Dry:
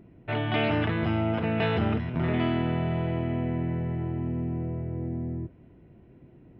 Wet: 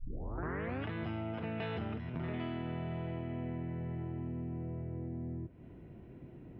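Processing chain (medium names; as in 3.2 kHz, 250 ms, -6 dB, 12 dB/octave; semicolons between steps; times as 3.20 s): tape start-up on the opening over 0.87 s; compression 3:1, threshold -42 dBFS, peak gain reduction 15.5 dB; trim +1.5 dB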